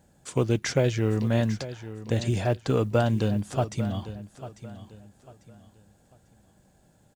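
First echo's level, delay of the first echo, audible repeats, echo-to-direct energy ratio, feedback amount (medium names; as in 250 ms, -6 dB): -14.0 dB, 846 ms, 3, -13.5 dB, 31%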